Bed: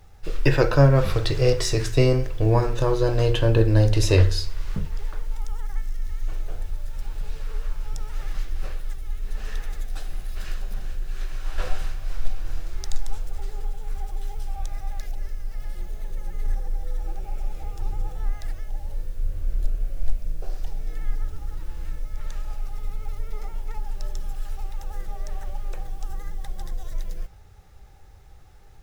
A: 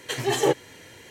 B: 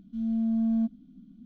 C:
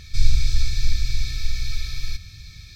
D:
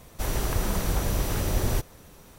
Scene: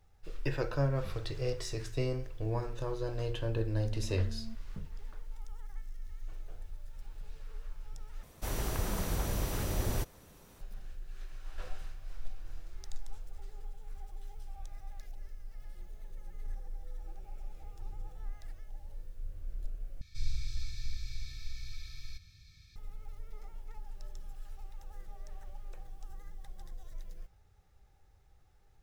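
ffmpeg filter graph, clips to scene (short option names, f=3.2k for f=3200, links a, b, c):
-filter_complex "[0:a]volume=-15dB[a];[2:a]tiltshelf=f=970:g=-5.5[b];[a]asplit=3[c][d][e];[c]atrim=end=8.234[f];[4:a]atrim=end=2.38,asetpts=PTS-STARTPTS,volume=-7dB[g];[d]atrim=start=10.606:end=20.014[h];[3:a]atrim=end=2.75,asetpts=PTS-STARTPTS,volume=-17dB[i];[e]atrim=start=22.756[j];[b]atrim=end=1.45,asetpts=PTS-STARTPTS,volume=-16.5dB,afade=t=in:d=0.004:c=hsin,afade=t=out:st=1.446:d=0.004:c=hsin,adelay=3680[k];[f][g]acrossfade=d=0.004:c1=hsin:c2=hsin[l];[l][h]acrossfade=d=0.004:c1=hsin:c2=hsin[m];[m][i]acrossfade=d=0.004:c1=hsin:c2=hsin[n];[n][j]acrossfade=d=0.004:c1=hsin:c2=hsin[o];[o][k]amix=inputs=2:normalize=0"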